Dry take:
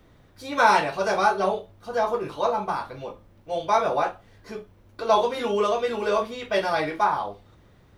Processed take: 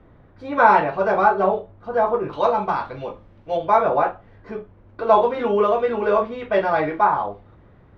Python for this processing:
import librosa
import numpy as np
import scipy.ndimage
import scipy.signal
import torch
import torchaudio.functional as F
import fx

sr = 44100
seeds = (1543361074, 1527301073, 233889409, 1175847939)

y = fx.lowpass(x, sr, hz=fx.steps((0.0, 1600.0), (2.33, 3300.0), (3.57, 1800.0)), slope=12)
y = y * librosa.db_to_amplitude(5.0)